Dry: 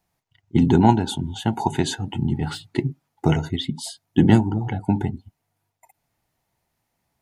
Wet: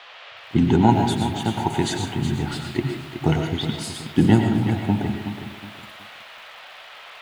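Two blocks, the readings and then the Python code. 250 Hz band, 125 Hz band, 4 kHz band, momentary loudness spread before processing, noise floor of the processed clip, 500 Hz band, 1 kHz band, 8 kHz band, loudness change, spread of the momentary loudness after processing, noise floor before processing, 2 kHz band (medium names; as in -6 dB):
0.0 dB, 0.0 dB, +1.5 dB, 11 LU, -43 dBFS, +0.5 dB, +0.5 dB, +0.5 dB, 0.0 dB, 23 LU, -77 dBFS, +3.0 dB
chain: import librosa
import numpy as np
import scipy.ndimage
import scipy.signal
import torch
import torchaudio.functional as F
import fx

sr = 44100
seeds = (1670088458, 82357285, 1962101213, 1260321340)

y = fx.dmg_noise_band(x, sr, seeds[0], low_hz=540.0, high_hz=3500.0, level_db=-43.0)
y = fx.rev_freeverb(y, sr, rt60_s=0.48, hf_ratio=0.7, predelay_ms=70, drr_db=4.0)
y = fx.echo_crushed(y, sr, ms=370, feedback_pct=35, bits=7, wet_db=-10)
y = F.gain(torch.from_numpy(y), -1.0).numpy()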